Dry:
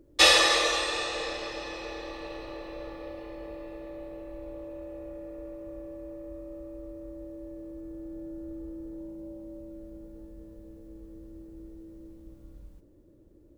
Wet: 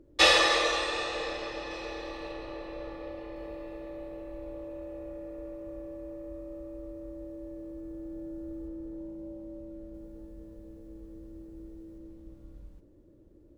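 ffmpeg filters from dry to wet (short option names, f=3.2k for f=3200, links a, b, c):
-af "asetnsamples=n=441:p=0,asendcmd='1.71 lowpass f 8600;2.32 lowpass f 4700;3.36 lowpass f 9300;8.68 lowpass f 4100;9.94 lowpass f 9200;11.98 lowpass f 5000',lowpass=f=3.6k:p=1"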